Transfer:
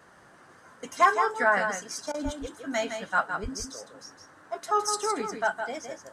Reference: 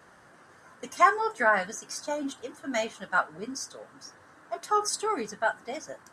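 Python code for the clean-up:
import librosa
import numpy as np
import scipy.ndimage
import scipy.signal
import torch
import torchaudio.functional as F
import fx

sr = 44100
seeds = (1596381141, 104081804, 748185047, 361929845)

y = fx.fix_declip(x, sr, threshold_db=-11.0)
y = fx.fix_deplosive(y, sr, at_s=(2.24, 3.42))
y = fx.fix_interpolate(y, sr, at_s=(2.12,), length_ms=21.0)
y = fx.fix_echo_inverse(y, sr, delay_ms=162, level_db=-7.0)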